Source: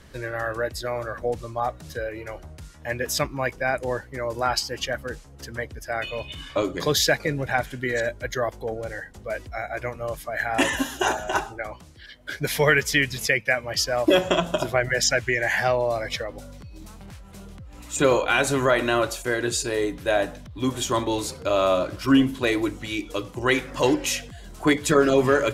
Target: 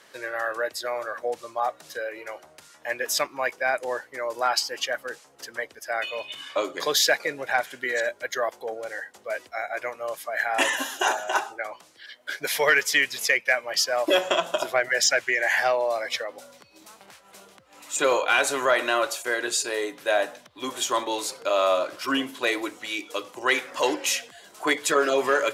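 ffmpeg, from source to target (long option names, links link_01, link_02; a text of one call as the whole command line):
ffmpeg -i in.wav -af "highpass=530,acontrast=58,volume=-5dB" out.wav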